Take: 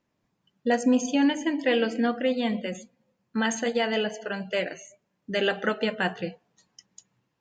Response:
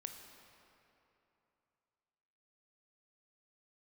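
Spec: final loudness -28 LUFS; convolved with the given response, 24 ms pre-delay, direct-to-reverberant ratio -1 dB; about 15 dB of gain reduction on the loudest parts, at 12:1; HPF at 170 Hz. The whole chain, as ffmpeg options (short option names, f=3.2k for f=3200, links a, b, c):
-filter_complex "[0:a]highpass=170,acompressor=threshold=-33dB:ratio=12,asplit=2[a][b];[1:a]atrim=start_sample=2205,adelay=24[c];[b][c]afir=irnorm=-1:irlink=0,volume=4.5dB[d];[a][d]amix=inputs=2:normalize=0,volume=7dB"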